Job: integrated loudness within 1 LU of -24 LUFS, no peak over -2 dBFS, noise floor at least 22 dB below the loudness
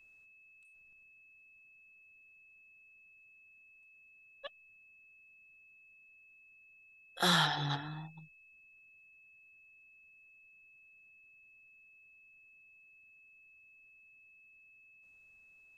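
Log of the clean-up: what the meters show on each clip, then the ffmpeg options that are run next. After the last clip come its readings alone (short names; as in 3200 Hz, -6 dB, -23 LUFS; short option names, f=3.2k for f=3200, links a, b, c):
steady tone 2600 Hz; tone level -59 dBFS; loudness -33.0 LUFS; peak -15.5 dBFS; loudness target -24.0 LUFS
-> -af "bandreject=f=2.6k:w=30"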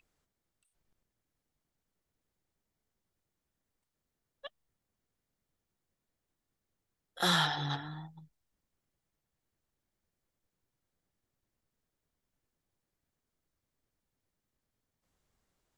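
steady tone none; loudness -31.0 LUFS; peak -15.5 dBFS; loudness target -24.0 LUFS
-> -af "volume=7dB"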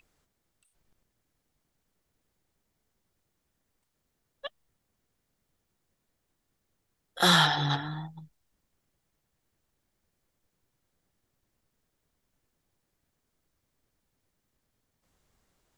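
loudness -24.0 LUFS; peak -8.5 dBFS; noise floor -80 dBFS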